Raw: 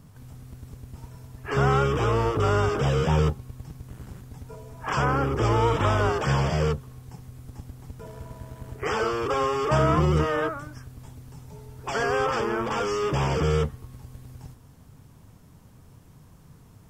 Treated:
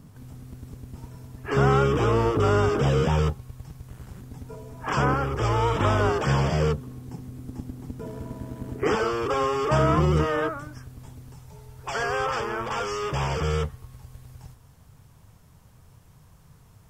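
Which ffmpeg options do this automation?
-af "asetnsamples=n=441:p=0,asendcmd='3.08 equalizer g -4;4.17 equalizer g 5;5.14 equalizer g -6;5.76 equalizer g 3;6.78 equalizer g 12.5;8.95 equalizer g 1;11.34 equalizer g -8.5',equalizer=f=270:t=o:w=1.3:g=5"

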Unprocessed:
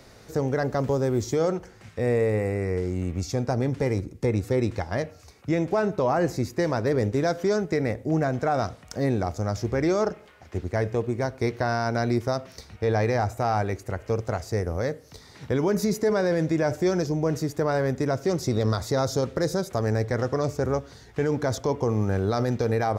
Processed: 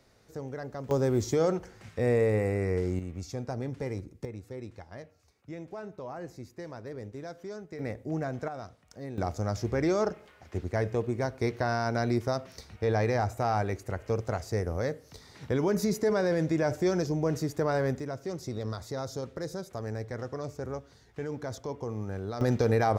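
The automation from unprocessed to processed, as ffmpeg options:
-af "asetnsamples=n=441:p=0,asendcmd='0.91 volume volume -2dB;2.99 volume volume -9.5dB;4.25 volume volume -17dB;7.79 volume volume -8.5dB;8.48 volume volume -15.5dB;9.18 volume volume -3.5dB;18 volume volume -11dB;22.41 volume volume -0.5dB',volume=0.224"

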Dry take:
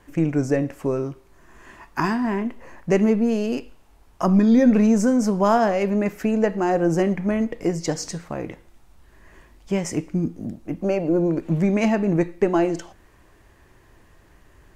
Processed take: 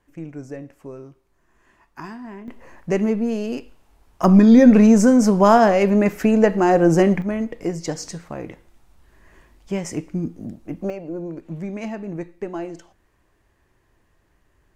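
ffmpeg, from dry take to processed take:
-af "asetnsamples=n=441:p=0,asendcmd='2.48 volume volume -2dB;4.24 volume volume 5dB;7.22 volume volume -2dB;10.9 volume volume -10dB',volume=0.224"

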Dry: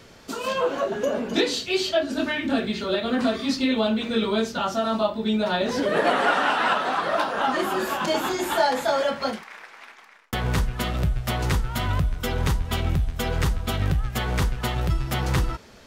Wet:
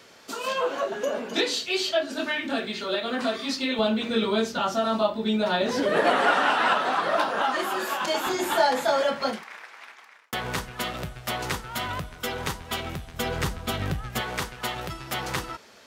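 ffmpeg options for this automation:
-af "asetnsamples=n=441:p=0,asendcmd='3.79 highpass f 150;7.43 highpass f 610;8.27 highpass f 160;9.57 highpass f 440;13.14 highpass f 180;14.21 highpass f 530',highpass=f=520:p=1"

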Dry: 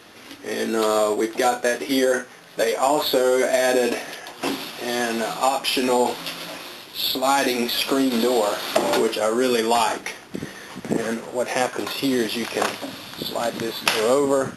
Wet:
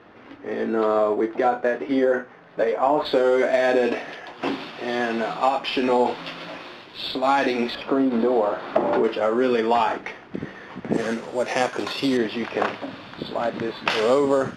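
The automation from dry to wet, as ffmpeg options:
-af "asetnsamples=n=441:p=0,asendcmd='3.05 lowpass f 2800;7.75 lowpass f 1400;9.04 lowpass f 2300;10.93 lowpass f 5700;12.17 lowpass f 2400;13.9 lowpass f 4400',lowpass=1600"

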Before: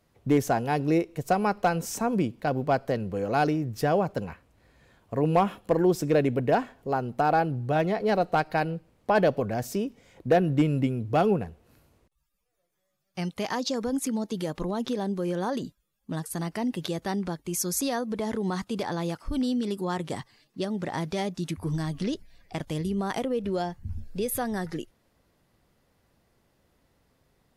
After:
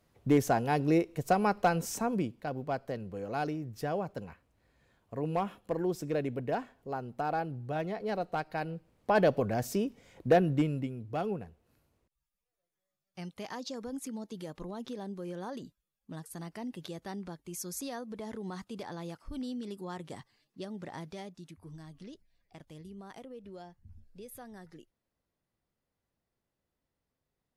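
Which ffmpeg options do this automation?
-af "volume=1.78,afade=t=out:st=1.79:d=0.68:silence=0.446684,afade=t=in:st=8.56:d=0.81:silence=0.421697,afade=t=out:st=10.32:d=0.56:silence=0.354813,afade=t=out:st=20.89:d=0.61:silence=0.421697"

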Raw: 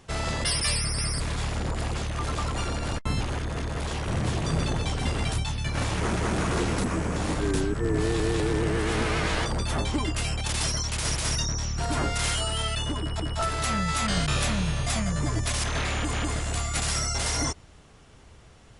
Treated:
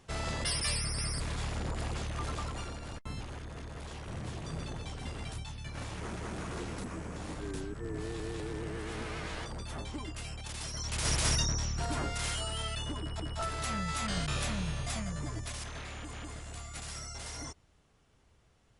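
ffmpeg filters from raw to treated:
-af "volume=1.88,afade=t=out:st=2.21:d=0.58:silence=0.473151,afade=t=in:st=10.71:d=0.51:silence=0.251189,afade=t=out:st=11.22:d=0.81:silence=0.446684,afade=t=out:st=14.72:d=1.08:silence=0.446684"

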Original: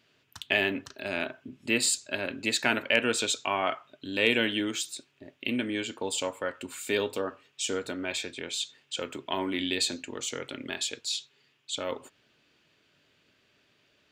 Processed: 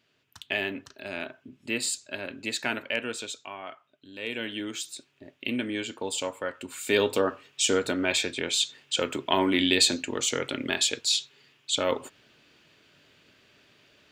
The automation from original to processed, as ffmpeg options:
-af "volume=5.96,afade=t=out:st=2.69:d=0.87:silence=0.375837,afade=t=in:st=4.2:d=0.9:silence=0.251189,afade=t=in:st=6.72:d=0.43:silence=0.446684"

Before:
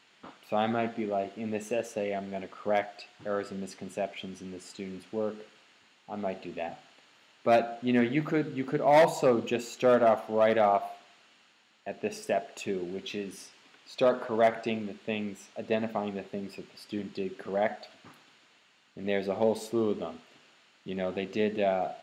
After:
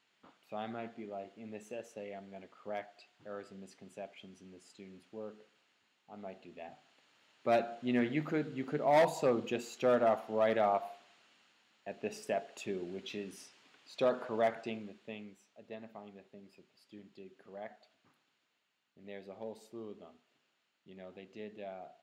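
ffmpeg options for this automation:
-af "volume=0.501,afade=t=in:st=6.57:d=1.03:silence=0.446684,afade=t=out:st=14.25:d=1.19:silence=0.251189"

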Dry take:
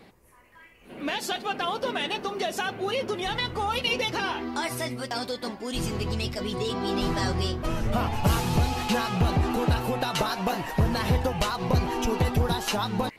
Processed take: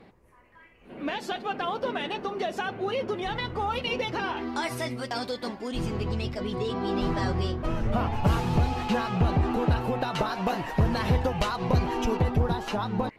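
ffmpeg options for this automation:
-af "asetnsamples=n=441:p=0,asendcmd='4.37 lowpass f 5100;5.68 lowpass f 2000;10.35 lowpass f 3600;12.17 lowpass f 1400',lowpass=f=1900:p=1"

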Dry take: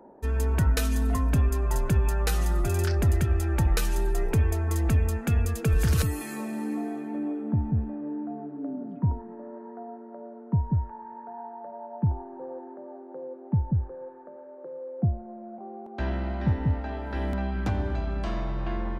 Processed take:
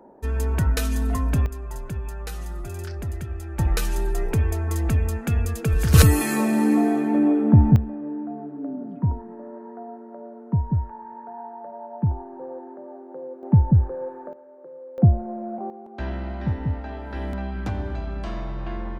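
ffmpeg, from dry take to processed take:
-af "asetnsamples=n=441:p=0,asendcmd='1.46 volume volume -7.5dB;3.59 volume volume 1.5dB;5.94 volume volume 12dB;7.76 volume volume 2.5dB;13.43 volume volume 9dB;14.33 volume volume -2.5dB;14.98 volume volume 9.5dB;15.7 volume volume -0.5dB',volume=1.19"

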